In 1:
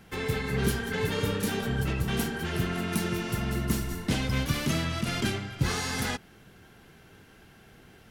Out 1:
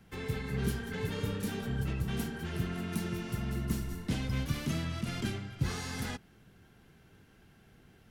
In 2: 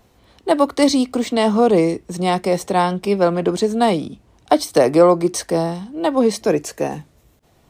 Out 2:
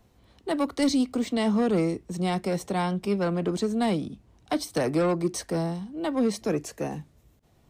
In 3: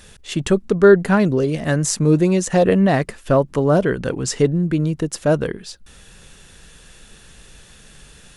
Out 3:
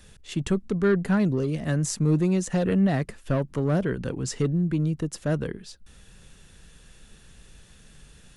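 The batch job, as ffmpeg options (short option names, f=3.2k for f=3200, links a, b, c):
-filter_complex "[0:a]acrossover=split=280|1300[a][b][c];[a]acontrast=28[d];[b]asoftclip=type=tanh:threshold=-17dB[e];[d][e][c]amix=inputs=3:normalize=0,volume=-9dB"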